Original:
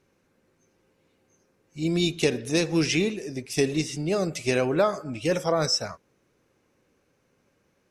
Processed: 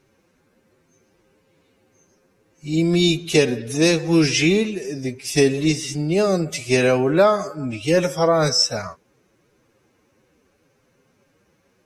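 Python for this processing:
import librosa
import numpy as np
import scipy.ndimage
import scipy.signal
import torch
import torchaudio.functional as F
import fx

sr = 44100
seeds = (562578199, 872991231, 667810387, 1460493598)

y = fx.stretch_vocoder(x, sr, factor=1.5)
y = y * 10.0 ** (6.5 / 20.0)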